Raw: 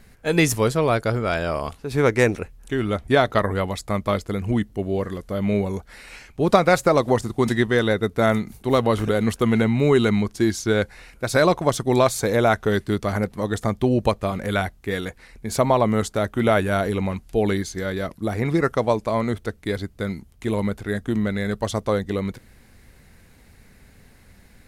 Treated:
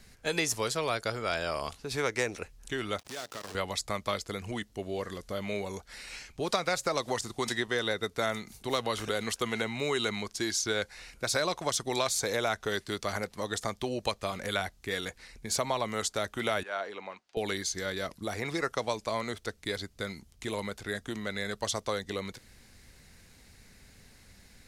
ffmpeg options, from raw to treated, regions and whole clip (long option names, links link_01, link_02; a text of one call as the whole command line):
ffmpeg -i in.wav -filter_complex "[0:a]asettb=1/sr,asplit=3[link_01][link_02][link_03];[link_01]atrim=end=2.994[link_04];[link_02]atrim=start=2.99:end=3.55,asetpts=PTS-STARTPTS,afade=type=in:duration=0.004:curve=qsin,afade=type=out:start_time=0.556:duration=0.004:curve=qsin,acompressor=threshold=-32dB:ratio=5:attack=3.2:release=140:knee=1:detection=peak,acrusher=bits=7:dc=4:mix=0:aa=0.000001,highpass=frequency=310:poles=1[link_05];[link_03]atrim=start=3.546[link_06];[link_04][link_05]acrossfade=duration=0.004:curve1=hsin:curve2=qsin[link_07];[link_07][link_06]acrossfade=duration=0.004:curve1=qsin:curve2=hsin,asettb=1/sr,asplit=3[link_08][link_09][link_10];[link_08]atrim=end=16.634[link_11];[link_09]atrim=start=16.63:end=17.37,asetpts=PTS-STARTPTS,afade=type=in:duration=0.004:curve=qsin,afade=type=out:start_time=0.736:duration=0.004:curve=qsin,highpass=730,lowpass=5300,highshelf=frequency=2100:gain=-12[link_12];[link_10]atrim=start=17.366[link_13];[link_11][link_12]acrossfade=duration=0.004:curve1=hsin:curve2=qsin[link_14];[link_14][link_13]acrossfade=duration=0.004:curve1=qsin:curve2=hsin,acrossover=split=420|1200[link_15][link_16][link_17];[link_15]acompressor=threshold=-34dB:ratio=4[link_18];[link_16]acompressor=threshold=-25dB:ratio=4[link_19];[link_17]acompressor=threshold=-28dB:ratio=4[link_20];[link_18][link_19][link_20]amix=inputs=3:normalize=0,equalizer=frequency=5500:width_type=o:width=1.9:gain=10,volume=-6.5dB" out.wav